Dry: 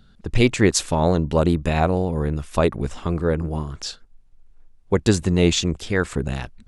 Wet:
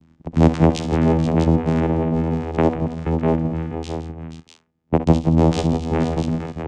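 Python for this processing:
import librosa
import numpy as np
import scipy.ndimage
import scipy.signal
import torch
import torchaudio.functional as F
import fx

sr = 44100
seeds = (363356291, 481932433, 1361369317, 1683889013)

y = fx.notch(x, sr, hz=4100.0, q=5.8)
y = fx.vocoder(y, sr, bands=4, carrier='saw', carrier_hz=81.2)
y = fx.echo_multitap(y, sr, ms=(61, 65, 166, 478, 648), db=(-18.5, -12.5, -14.0, -10.5, -8.0))
y = y * librosa.db_to_amplitude(3.0)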